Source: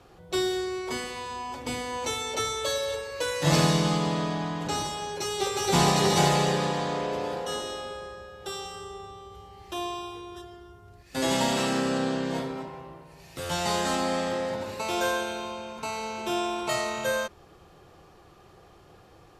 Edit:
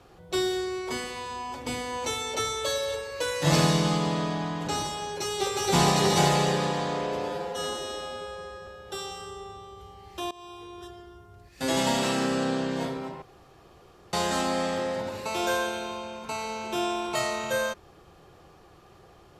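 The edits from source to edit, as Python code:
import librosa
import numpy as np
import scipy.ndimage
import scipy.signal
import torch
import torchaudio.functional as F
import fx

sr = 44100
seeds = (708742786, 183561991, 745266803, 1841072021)

y = fx.edit(x, sr, fx.stretch_span(start_s=7.29, length_s=0.92, factor=1.5),
    fx.fade_in_from(start_s=9.85, length_s=0.7, curve='qsin', floor_db=-20.5),
    fx.room_tone_fill(start_s=12.76, length_s=0.91), tone=tone)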